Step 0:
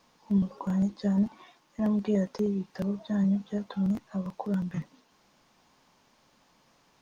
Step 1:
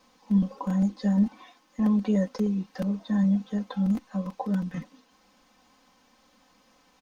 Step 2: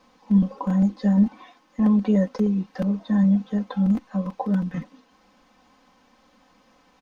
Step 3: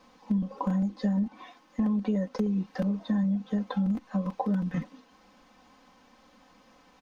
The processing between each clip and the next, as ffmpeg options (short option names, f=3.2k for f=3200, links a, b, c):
-af "aecho=1:1:3.9:0.88"
-af "highshelf=f=4.3k:g=-10,volume=4.5dB"
-af "acompressor=threshold=-24dB:ratio=10"